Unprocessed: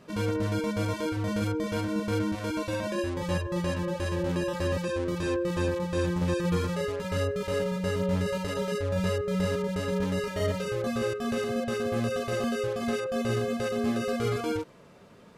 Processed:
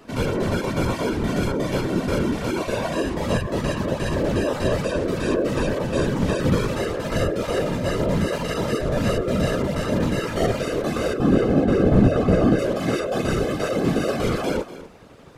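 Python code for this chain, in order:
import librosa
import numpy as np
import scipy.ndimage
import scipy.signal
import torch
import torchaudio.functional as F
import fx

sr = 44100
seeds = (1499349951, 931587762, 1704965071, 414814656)

y = fx.tilt_eq(x, sr, slope=-3.5, at=(11.18, 12.59))
y = y + 10.0 ** (-14.5 / 20.0) * np.pad(y, (int(244 * sr / 1000.0), 0))[:len(y)]
y = fx.whisperise(y, sr, seeds[0])
y = y * 10.0 ** (6.0 / 20.0)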